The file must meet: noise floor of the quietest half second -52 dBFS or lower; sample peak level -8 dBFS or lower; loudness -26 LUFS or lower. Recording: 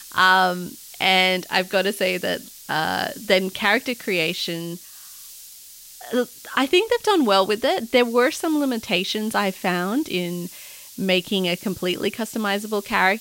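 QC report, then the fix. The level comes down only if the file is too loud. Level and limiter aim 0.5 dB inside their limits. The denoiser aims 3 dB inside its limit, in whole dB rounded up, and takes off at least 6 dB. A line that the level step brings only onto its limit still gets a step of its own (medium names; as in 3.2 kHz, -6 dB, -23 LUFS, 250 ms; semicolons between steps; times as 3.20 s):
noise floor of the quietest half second -43 dBFS: fail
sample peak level -5.0 dBFS: fail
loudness -21.5 LUFS: fail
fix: noise reduction 7 dB, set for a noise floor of -43 dBFS; trim -5 dB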